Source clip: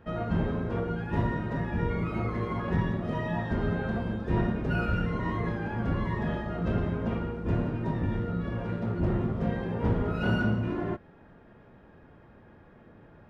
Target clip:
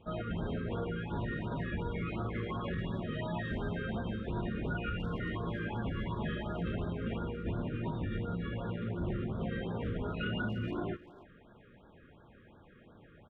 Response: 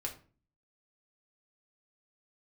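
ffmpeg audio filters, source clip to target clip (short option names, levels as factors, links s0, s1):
-filter_complex "[0:a]alimiter=limit=0.0708:level=0:latency=1:release=68,crystalizer=i=5:c=0,aresample=8000,aresample=44100,asplit=2[s0][s1];[s1]adelay=290,highpass=300,lowpass=3400,asoftclip=type=hard:threshold=0.0299,volume=0.158[s2];[s0][s2]amix=inputs=2:normalize=0,afftfilt=real='re*(1-between(b*sr/1024,760*pow(2400/760,0.5+0.5*sin(2*PI*2.8*pts/sr))/1.41,760*pow(2400/760,0.5+0.5*sin(2*PI*2.8*pts/sr))*1.41))':imag='im*(1-between(b*sr/1024,760*pow(2400/760,0.5+0.5*sin(2*PI*2.8*pts/sr))/1.41,760*pow(2400/760,0.5+0.5*sin(2*PI*2.8*pts/sr))*1.41))':win_size=1024:overlap=0.75,volume=0.596"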